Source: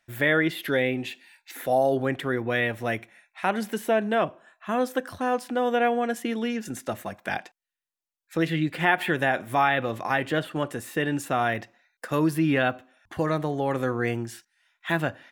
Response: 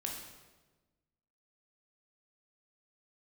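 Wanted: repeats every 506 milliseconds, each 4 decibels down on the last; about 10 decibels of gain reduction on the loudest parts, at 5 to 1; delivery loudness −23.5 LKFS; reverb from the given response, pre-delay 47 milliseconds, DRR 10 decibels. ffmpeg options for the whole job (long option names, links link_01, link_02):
-filter_complex "[0:a]acompressor=threshold=-29dB:ratio=5,aecho=1:1:506|1012|1518|2024|2530|3036|3542|4048|4554:0.631|0.398|0.25|0.158|0.0994|0.0626|0.0394|0.0249|0.0157,asplit=2[link_01][link_02];[1:a]atrim=start_sample=2205,adelay=47[link_03];[link_02][link_03]afir=irnorm=-1:irlink=0,volume=-10.5dB[link_04];[link_01][link_04]amix=inputs=2:normalize=0,volume=8dB"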